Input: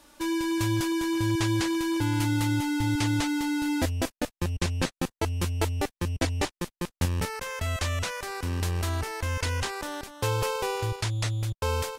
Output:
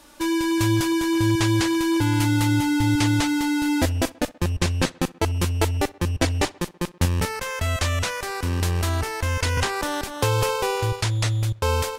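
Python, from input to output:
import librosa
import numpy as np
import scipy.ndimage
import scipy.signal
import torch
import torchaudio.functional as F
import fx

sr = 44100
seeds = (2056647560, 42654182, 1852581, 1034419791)

y = fx.echo_tape(x, sr, ms=64, feedback_pct=74, wet_db=-21.0, lp_hz=3200.0, drive_db=18.0, wow_cents=11)
y = fx.band_squash(y, sr, depth_pct=70, at=(9.57, 10.49))
y = y * librosa.db_to_amplitude(5.5)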